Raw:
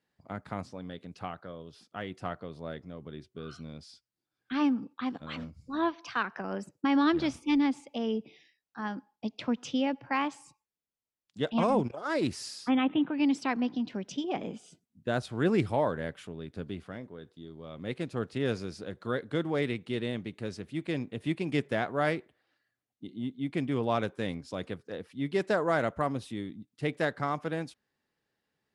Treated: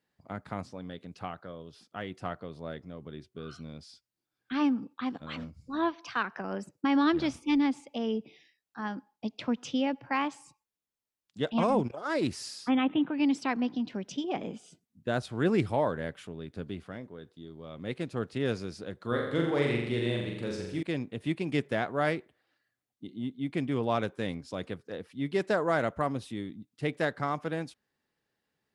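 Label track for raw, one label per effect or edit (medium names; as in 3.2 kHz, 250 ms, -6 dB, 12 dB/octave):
19.070000	20.830000	flutter echo walls apart 7.3 m, dies away in 0.87 s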